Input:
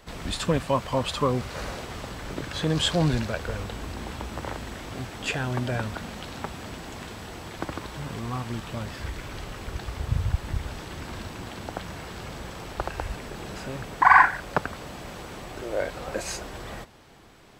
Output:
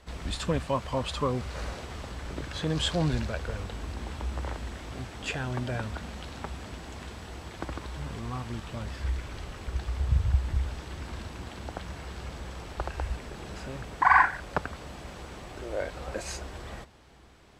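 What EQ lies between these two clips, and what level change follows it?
low-pass 11 kHz 12 dB/octave; peaking EQ 64 Hz +13 dB 0.4 oct; -4.5 dB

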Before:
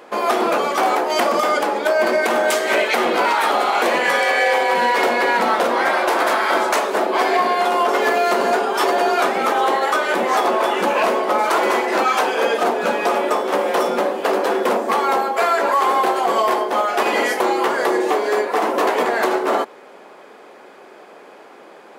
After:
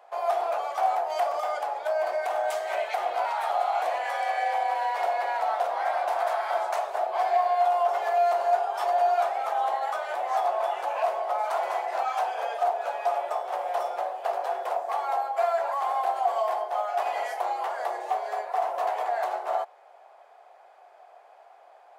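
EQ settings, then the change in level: ladder high-pass 660 Hz, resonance 75%; -5.5 dB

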